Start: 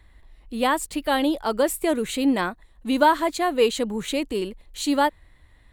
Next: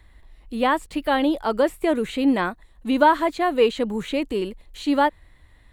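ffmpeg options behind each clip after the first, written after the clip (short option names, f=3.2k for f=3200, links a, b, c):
-filter_complex "[0:a]acrossover=split=3500[a][b];[b]acompressor=threshold=-47dB:ratio=4:attack=1:release=60[c];[a][c]amix=inputs=2:normalize=0,volume=1.5dB"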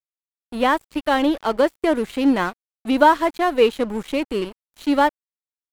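-af "aeval=exprs='sgn(val(0))*max(abs(val(0))-0.0168,0)':c=same,volume=3dB"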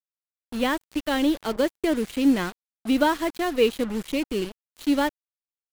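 -af "equalizer=f=930:w=0.74:g=-10.5,acrusher=bits=5:mix=0:aa=0.5"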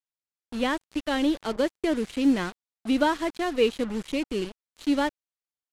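-af "lowpass=9.1k,volume=-2dB"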